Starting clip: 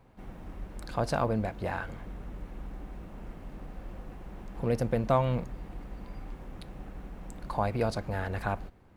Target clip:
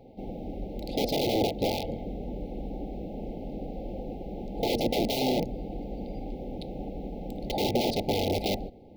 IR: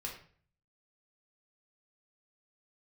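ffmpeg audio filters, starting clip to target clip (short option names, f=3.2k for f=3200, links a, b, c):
-af "aeval=exprs='(mod(25.1*val(0)+1,2)-1)/25.1':c=same,afftfilt=real='re*(1-between(b*sr/4096,880,2000))':imag='im*(1-between(b*sr/4096,880,2000))':win_size=4096:overlap=0.75,equalizer=f=250:t=o:w=1:g=8,equalizer=f=500:t=o:w=1:g=10,equalizer=f=1k:t=o:w=1:g=5,equalizer=f=2k:t=o:w=1:g=-6,equalizer=f=4k:t=o:w=1:g=8,equalizer=f=8k:t=o:w=1:g=-12,volume=2dB"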